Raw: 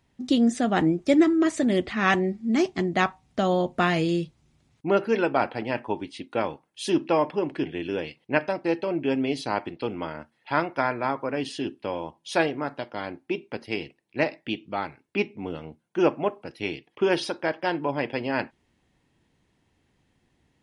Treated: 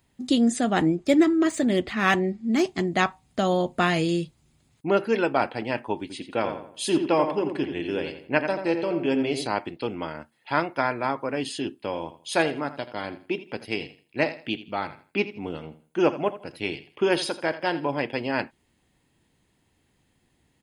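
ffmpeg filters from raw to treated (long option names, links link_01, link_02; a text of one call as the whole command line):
ffmpeg -i in.wav -filter_complex "[0:a]asettb=1/sr,asplit=3[link_01][link_02][link_03];[link_01]atrim=end=0.954[link_04];[link_02]atrim=start=0.95:end=2.61,asetpts=PTS-STARTPTS,afade=type=in:duration=0.004:curve=qsin,afade=type=out:start_time=1.656:duration=0.004:curve=qsin,adynamicsmooth=sensitivity=5:basefreq=7700[link_05];[link_03]atrim=start=2.606[link_06];[link_04][link_05]acrossfade=duration=0.004:curve1=hsin:curve2=qsin[link_07];[link_07][link_06]acrossfade=duration=0.004:curve1=qsin:curve2=hsin,asettb=1/sr,asplit=3[link_08][link_09][link_10];[link_08]atrim=end=6.014[link_11];[link_09]atrim=start=6.01:end=9.47,asetpts=PTS-STARTPTS,afade=type=in:duration=0.004:curve=qsin,afade=type=out:start_time=3.456:duration=0.004:curve=qsin,asplit=2[link_12][link_13];[link_13]adelay=86,lowpass=frequency=2600:poles=1,volume=-7dB,asplit=2[link_14][link_15];[link_15]adelay=86,lowpass=frequency=2600:poles=1,volume=0.39,asplit=2[link_16][link_17];[link_17]adelay=86,lowpass=frequency=2600:poles=1,volume=0.39,asplit=2[link_18][link_19];[link_19]adelay=86,lowpass=frequency=2600:poles=1,volume=0.39,asplit=2[link_20][link_21];[link_21]adelay=86,lowpass=frequency=2600:poles=1,volume=0.39[link_22];[link_12][link_14][link_16][link_18][link_20][link_22]amix=inputs=6:normalize=0,atrim=end_sample=152586[link_23];[link_10]atrim=start=9.466[link_24];[link_11][link_23]acrossfade=duration=0.004:curve1=hsin:curve2=qsin[link_25];[link_25][link_24]acrossfade=duration=0.004:curve1=qsin:curve2=hsin,asplit=3[link_26][link_27][link_28];[link_26]afade=type=out:start_time=11.92:duration=0.02[link_29];[link_27]aecho=1:1:82|164|246:0.188|0.0509|0.0137,afade=type=in:start_time=11.92:duration=0.02,afade=type=out:start_time=17.96:duration=0.02[link_30];[link_28]afade=type=in:start_time=17.96:duration=0.02[link_31];[link_29][link_30][link_31]amix=inputs=3:normalize=0,highshelf=frequency=6500:gain=11,bandreject=frequency=5700:width=7.4" out.wav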